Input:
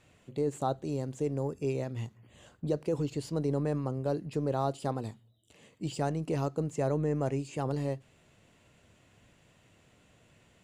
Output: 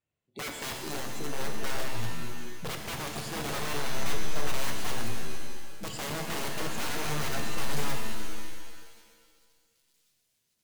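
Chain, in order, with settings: spectral noise reduction 27 dB; hum notches 60/120/180/240/300 Hz; integer overflow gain 31.5 dB; on a send: feedback echo behind a high-pass 1087 ms, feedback 47%, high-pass 4 kHz, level -24 dB; on the sum: pitch-shifted reverb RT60 1.7 s, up +7 st, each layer -2 dB, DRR 3.5 dB

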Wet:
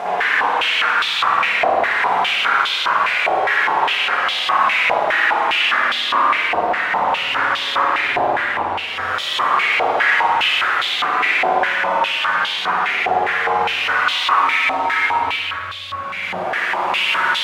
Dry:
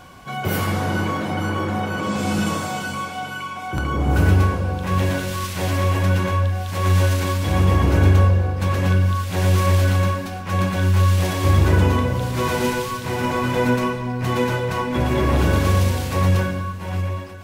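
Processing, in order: integer overflow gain 18.5 dB; Paulstretch 10×, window 0.10 s, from 7.70 s; spring tank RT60 1.3 s, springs 54 ms, chirp 45 ms, DRR -8 dB; step-sequenced band-pass 4.9 Hz 730–3500 Hz; trim +7.5 dB

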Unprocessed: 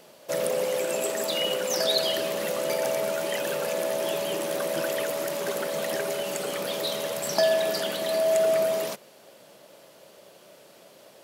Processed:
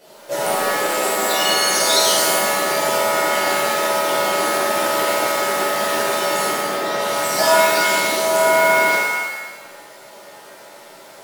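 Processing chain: 6.51–6.99 s: low-pass 2 kHz 12 dB/octave; pitch-shifted reverb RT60 1 s, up +7 st, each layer -2 dB, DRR -9.5 dB; trim -3 dB

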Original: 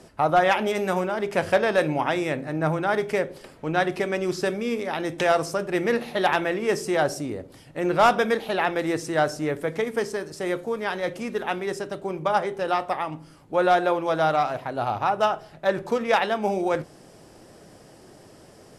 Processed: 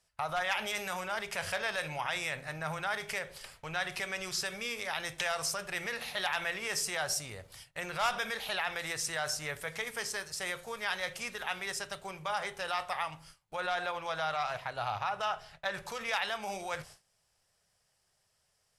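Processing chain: gate with hold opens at -36 dBFS; 13.60–15.74 s: treble shelf 8.5 kHz -11.5 dB; peak limiter -18.5 dBFS, peak gain reduction 8 dB; amplifier tone stack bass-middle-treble 10-0-10; trim +4.5 dB

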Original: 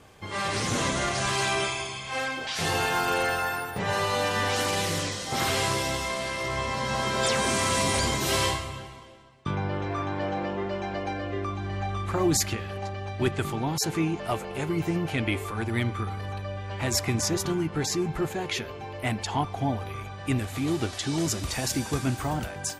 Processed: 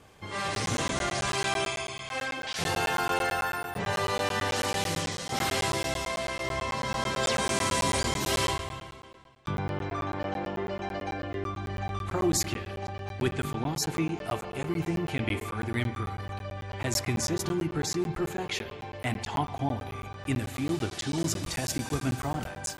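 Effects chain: spring tank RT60 1.5 s, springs 48 ms, chirp 50 ms, DRR 12 dB; crackling interface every 0.11 s, samples 512, zero, from 0.55 s; trim -2.5 dB

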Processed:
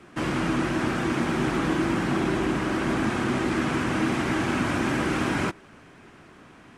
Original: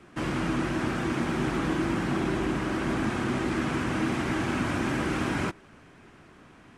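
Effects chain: bass shelf 100 Hz -5 dB; trim +3.5 dB

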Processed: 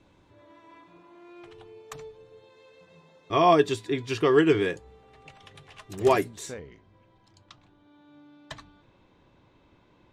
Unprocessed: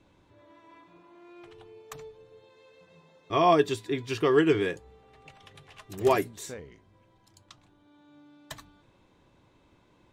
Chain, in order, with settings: low-pass 11 kHz 12 dB/octave, from 6.59 s 5 kHz; trim +2 dB

